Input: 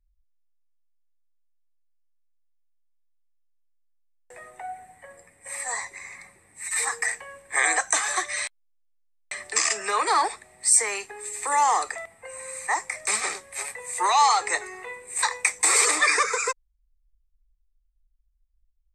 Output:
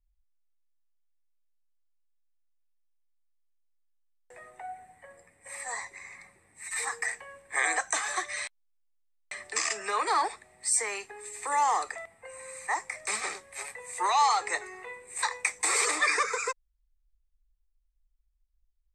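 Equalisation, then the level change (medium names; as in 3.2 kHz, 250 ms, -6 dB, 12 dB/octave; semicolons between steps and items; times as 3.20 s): treble shelf 7.3 kHz -6.5 dB; -4.5 dB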